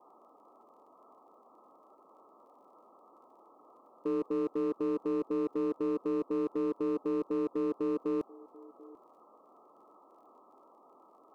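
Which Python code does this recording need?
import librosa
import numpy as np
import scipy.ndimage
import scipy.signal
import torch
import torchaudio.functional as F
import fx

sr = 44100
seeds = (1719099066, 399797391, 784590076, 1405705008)

y = fx.fix_declip(x, sr, threshold_db=-27.0)
y = fx.fix_declick_ar(y, sr, threshold=6.5)
y = fx.noise_reduce(y, sr, print_start_s=10.82, print_end_s=11.32, reduce_db=19.0)
y = fx.fix_echo_inverse(y, sr, delay_ms=739, level_db=-22.5)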